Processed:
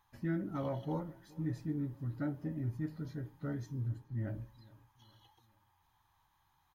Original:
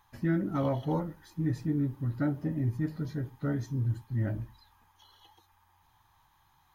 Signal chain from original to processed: feedback echo 0.421 s, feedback 50%, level -23 dB; on a send at -19 dB: reverb RT60 0.50 s, pre-delay 3 ms; 3.89–4.34 on the sum: mismatched tape noise reduction decoder only; gain -7.5 dB

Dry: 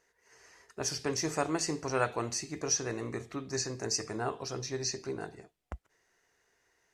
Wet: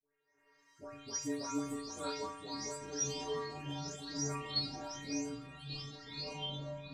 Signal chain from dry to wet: spectral delay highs late, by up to 0.378 s; frequency shift -38 Hz; echoes that change speed 0.554 s, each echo -5 st, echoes 3; metallic resonator 140 Hz, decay 0.83 s, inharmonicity 0.008; gain +8 dB

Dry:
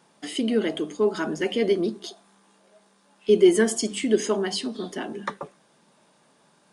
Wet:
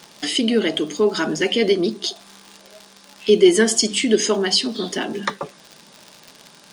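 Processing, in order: crackle 120/s -43 dBFS; EQ curve 1100 Hz 0 dB, 5000 Hz +9 dB, 9800 Hz +1 dB; in parallel at +3 dB: compressor, threshold -36 dBFS, peak gain reduction 22.5 dB; on the sum: gain +2.5 dB

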